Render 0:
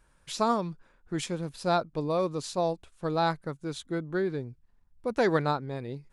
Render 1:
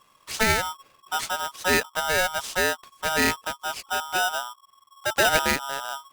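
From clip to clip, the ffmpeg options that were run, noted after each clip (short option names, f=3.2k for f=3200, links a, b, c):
-af "aeval=exprs='val(0)*sgn(sin(2*PI*1100*n/s))':c=same,volume=4dB"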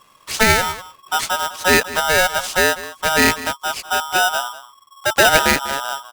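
-af "aecho=1:1:196:0.158,volume=7.5dB"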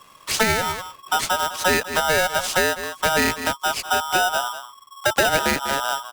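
-filter_complex "[0:a]acrossover=split=85|610[a][b][c];[a]acompressor=threshold=-42dB:ratio=4[d];[b]acompressor=threshold=-26dB:ratio=4[e];[c]acompressor=threshold=-22dB:ratio=4[f];[d][e][f]amix=inputs=3:normalize=0,volume=3dB"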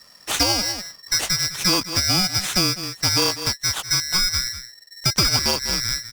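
-af "afftfilt=real='real(if(lt(b,272),68*(eq(floor(b/68),0)*1+eq(floor(b/68),1)*2+eq(floor(b/68),2)*3+eq(floor(b/68),3)*0)+mod(b,68),b),0)':imag='imag(if(lt(b,272),68*(eq(floor(b/68),0)*1+eq(floor(b/68),1)*2+eq(floor(b/68),2)*3+eq(floor(b/68),3)*0)+mod(b,68),b),0)':win_size=2048:overlap=0.75"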